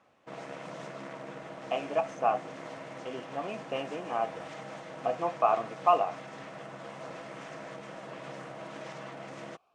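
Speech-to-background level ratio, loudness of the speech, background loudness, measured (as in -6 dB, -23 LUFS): 12.5 dB, -31.0 LUFS, -43.5 LUFS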